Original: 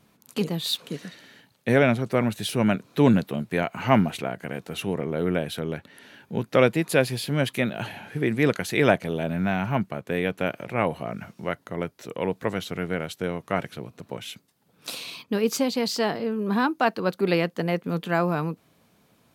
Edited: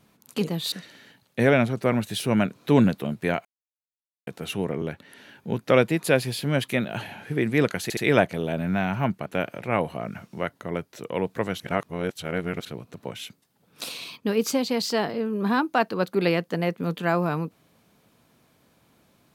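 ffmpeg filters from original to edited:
-filter_complex "[0:a]asplit=10[a][b][c][d][e][f][g][h][i][j];[a]atrim=end=0.722[k];[b]atrim=start=1.008:end=3.74,asetpts=PTS-STARTPTS,afade=t=out:st=2.728:d=0.004:c=hsin[l];[c]atrim=start=3.74:end=4.56,asetpts=PTS-STARTPTS,volume=0[m];[d]atrim=start=4.56:end=5.112,asetpts=PTS-STARTPTS,afade=t=in:d=0.004:c=hsin[n];[e]atrim=start=5.668:end=8.752[o];[f]atrim=start=8.678:end=8.752[p];[g]atrim=start=8.678:end=9.972[q];[h]atrim=start=10.318:end=12.662[r];[i]atrim=start=12.658:end=13.712,asetpts=PTS-STARTPTS,areverse[s];[j]atrim=start=13.708[t];[l][m][n]concat=n=3:v=0:a=1[u];[k][u]acrossfade=d=0.004:c1=hsin:c2=hsin[v];[v][o]acrossfade=d=0.004:c1=hsin:c2=hsin[w];[w][p]acrossfade=d=0.004:c1=hsin:c2=hsin[x];[x][q]acrossfade=d=0.004:c1=hsin:c2=hsin[y];[y][r]acrossfade=d=0.004:c1=hsin:c2=hsin[z];[z][s]acrossfade=d=0.004:c1=hsin:c2=hsin[aa];[aa][t]acrossfade=d=0.004:c1=hsin:c2=hsin"

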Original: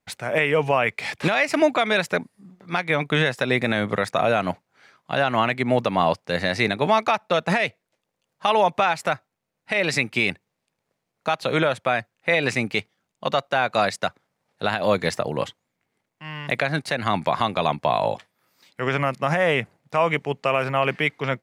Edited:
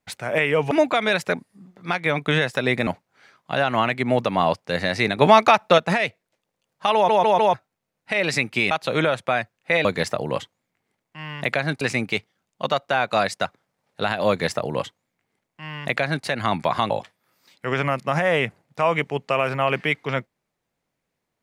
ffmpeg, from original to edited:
-filter_complex "[0:a]asplit=13[a][b][c][d][e][f][g][h][i][j][k][l][m];[a]atrim=end=0.712[n];[b]atrim=start=1.548:end=3.712[o];[c]atrim=start=4.468:end=6.782[p];[d]atrim=start=6.778:end=7.382,asetpts=PTS-STARTPTS,volume=6dB[q];[e]atrim=start=7.378:end=8.692[r];[f]atrim=start=8.538:end=8.692[s];[g]atrim=start=8.538:end=8.692[t];[h]atrim=start=8.538:end=8.692[u];[i]atrim=start=9.138:end=10.312[v];[j]atrim=start=11.288:end=12.432[w];[k]atrim=start=14.908:end=16.872[x];[l]atrim=start=12.428:end=17.522[y];[m]atrim=start=18.048[z];[n][o]acrossfade=d=0.004:c1=hsin:c2=hsin[aa];[aa][p]acrossfade=d=0.004:c1=hsin:c2=hsin[ab];[ab][q]acrossfade=d=0.004:c1=hsin:c2=hsin[ac];[ac][r]acrossfade=d=0.004:c1=hsin:c2=hsin[ad];[ad][s]acrossfade=d=0.004:c1=hsin:c2=hsin[ae];[ae][t]acrossfade=d=0.004:c1=hsin:c2=hsin[af];[af][u]acrossfade=d=0.004:c1=hsin:c2=hsin[ag];[ag][v]acrossfade=d=0.004:c1=hsin:c2=hsin[ah];[ah][w]acrossfade=d=0.004:c1=hsin:c2=hsin[ai];[ai][x]acrossfade=d=0.004:c1=hsin:c2=hsin[aj];[aj][y]acrossfade=d=0.004:c1=hsin:c2=hsin[ak];[ak][z]acrossfade=d=0.004:c1=hsin:c2=hsin"

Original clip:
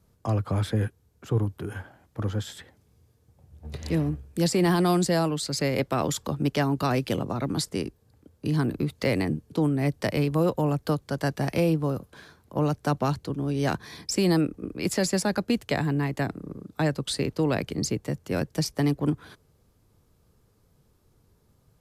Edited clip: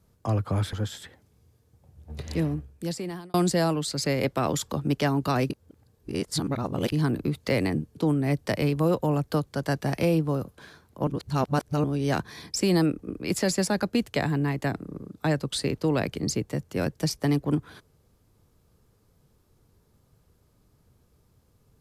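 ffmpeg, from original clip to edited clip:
-filter_complex "[0:a]asplit=7[a][b][c][d][e][f][g];[a]atrim=end=0.732[h];[b]atrim=start=2.278:end=4.89,asetpts=PTS-STARTPTS,afade=t=out:st=1.572:d=1.04[i];[c]atrim=start=4.89:end=7.052,asetpts=PTS-STARTPTS,afade=t=in:d=0.004:c=hsin[j];[d]atrim=start=7.048:end=8.472,asetpts=PTS-STARTPTS,areverse[k];[e]atrim=start=8.468:end=12.622[l];[f]atrim=start=12.618:end=13.392,asetpts=PTS-STARTPTS,areverse[m];[g]atrim=start=13.388[n];[i][j]concat=n=2:v=0:a=1[o];[h][o]acrossfade=d=0.004:c1=hsin:c2=hsin[p];[p][k]acrossfade=d=0.004:c1=hsin:c2=hsin[q];[q][l]acrossfade=d=0.004:c1=hsin:c2=hsin[r];[r][m]acrossfade=d=0.004:c1=hsin:c2=hsin[s];[s][n]acrossfade=d=0.004:c1=hsin:c2=hsin"

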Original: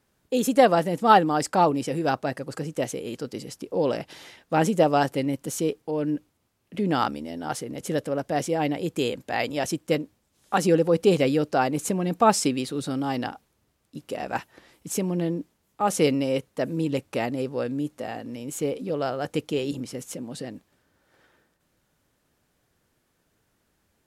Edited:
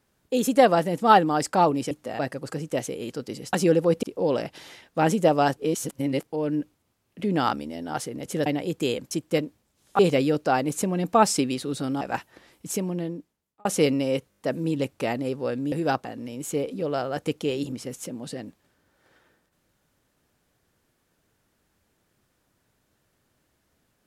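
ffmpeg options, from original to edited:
-filter_complex "[0:a]asplit=18[a][b][c][d][e][f][g][h][i][j][k][l][m][n][o][p][q][r];[a]atrim=end=1.912[s];[b]atrim=start=17.848:end=18.132[t];[c]atrim=start=2.238:end=3.582[u];[d]atrim=start=10.558:end=11.062[v];[e]atrim=start=3.578:end=5.122[w];[f]atrim=start=5.118:end=5.782,asetpts=PTS-STARTPTS,areverse[x];[g]atrim=start=5.778:end=8.012[y];[h]atrim=start=8.618:end=9.272[z];[i]atrim=start=9.678:end=10.562[aa];[j]atrim=start=11.058:end=13.082[ab];[k]atrim=start=14.218:end=15.86,asetpts=PTS-STARTPTS,afade=t=out:st=0.652:d=0.99[ac];[l]atrim=start=15.86:end=16.532,asetpts=PTS-STARTPTS,afade=t=in:d=0.004:c=hsin[ad];[m]atrim=start=16.508:end=16.532[ae];[n]atrim=start=16.508:end=16.532[af];[o]atrim=start=16.508:end=16.532[ag];[p]atrim=start=16.508:end=17.852[ah];[q]atrim=start=1.908:end=2.242[ai];[r]atrim=start=18.128[aj];[s][t]acrossfade=d=0.004:c1=hsin:c2=hsin[ak];[ak][u]acrossfade=d=0.004:c1=hsin:c2=hsin[al];[al][v]acrossfade=d=0.004:c1=hsin:c2=hsin[am];[am][w]acrossfade=d=0.004:c1=hsin:c2=hsin[an];[an][x]acrossfade=d=0.004:c1=hsin:c2=hsin[ao];[ao][y]acrossfade=d=0.004:c1=hsin:c2=hsin[ap];[ap][z]acrossfade=d=0.004:c1=hsin:c2=hsin[aq];[aq][aa]acrossfade=d=0.004:c1=hsin:c2=hsin[ar];[ar][ab]acrossfade=d=0.004:c1=hsin:c2=hsin[as];[ac][ad]concat=n=2:v=0:a=1[at];[as][at]acrossfade=d=0.004:c1=hsin:c2=hsin[au];[au][ae]acrossfade=d=0.004:c1=hsin:c2=hsin[av];[av][af]acrossfade=d=0.004:c1=hsin:c2=hsin[aw];[aw][ag]acrossfade=d=0.004:c1=hsin:c2=hsin[ax];[ax][ah]acrossfade=d=0.004:c1=hsin:c2=hsin[ay];[ay][ai]acrossfade=d=0.004:c1=hsin:c2=hsin[az];[az][aj]acrossfade=d=0.004:c1=hsin:c2=hsin"

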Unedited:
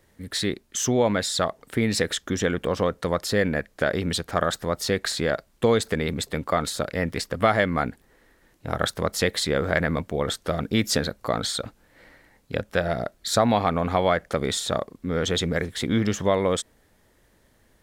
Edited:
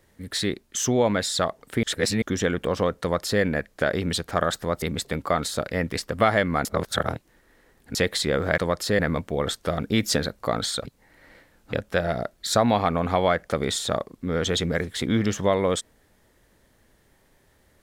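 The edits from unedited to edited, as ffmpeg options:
-filter_complex "[0:a]asplit=10[a][b][c][d][e][f][g][h][i][j];[a]atrim=end=1.832[k];[b]atrim=start=1.828:end=2.222,asetpts=PTS-STARTPTS,areverse[l];[c]atrim=start=2.218:end=4.822[m];[d]atrim=start=6.038:end=7.872[n];[e]atrim=start=7.868:end=9.172,asetpts=PTS-STARTPTS,areverse[o];[f]atrim=start=9.168:end=9.802[p];[g]atrim=start=3.008:end=3.422[q];[h]atrim=start=9.798:end=11.662[r];[i]atrim=start=11.658:end=12.542,asetpts=PTS-STARTPTS,areverse[s];[j]atrim=start=12.538[t];[k][l]acrossfade=d=0.004:c1=hsin:c2=hsin[u];[u][m]acrossfade=d=0.004:c1=hsin:c2=hsin[v];[v][n]acrossfade=d=0.004:c1=hsin:c2=hsin[w];[w][o]acrossfade=d=0.004:c1=hsin:c2=hsin[x];[x][p]acrossfade=d=0.004:c1=hsin:c2=hsin[y];[y][q]acrossfade=d=0.004:c1=hsin:c2=hsin[z];[z][r]acrossfade=d=0.004:c1=hsin:c2=hsin[aa];[aa][s]acrossfade=d=0.004:c1=hsin:c2=hsin[ab];[ab][t]acrossfade=d=0.004:c1=hsin:c2=hsin"

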